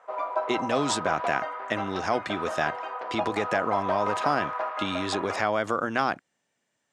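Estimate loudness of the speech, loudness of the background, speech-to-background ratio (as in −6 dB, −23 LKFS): −29.0 LKFS, −32.0 LKFS, 3.0 dB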